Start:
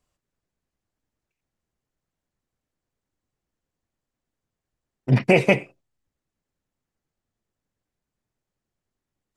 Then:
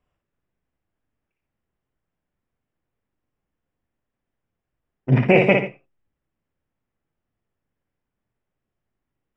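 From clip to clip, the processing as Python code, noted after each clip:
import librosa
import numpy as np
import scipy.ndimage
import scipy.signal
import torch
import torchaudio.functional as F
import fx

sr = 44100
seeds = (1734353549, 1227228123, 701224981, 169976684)

y = scipy.signal.savgol_filter(x, 25, 4, mode='constant')
y = fx.echo_multitap(y, sr, ms=(58, 117, 138), db=(-4.5, -17.0, -16.5))
y = y * 10.0 ** (1.0 / 20.0)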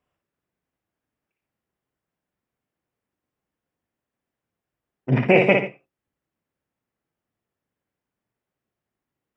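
y = fx.highpass(x, sr, hz=160.0, slope=6)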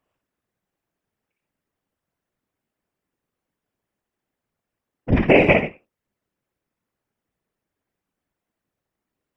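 y = fx.whisperise(x, sr, seeds[0])
y = y * 10.0 ** (2.0 / 20.0)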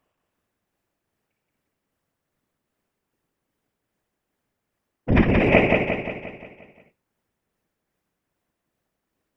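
y = fx.over_compress(x, sr, threshold_db=-16.0, ratio=-0.5)
y = y * (1.0 - 0.5 / 2.0 + 0.5 / 2.0 * np.cos(2.0 * np.pi * 2.5 * (np.arange(len(y)) / sr)))
y = fx.echo_feedback(y, sr, ms=176, feedback_pct=52, wet_db=-3.5)
y = y * 10.0 ** (1.5 / 20.0)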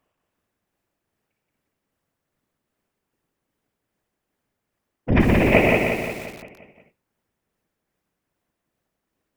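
y = fx.echo_crushed(x, sr, ms=122, feedback_pct=35, bits=6, wet_db=-4.5)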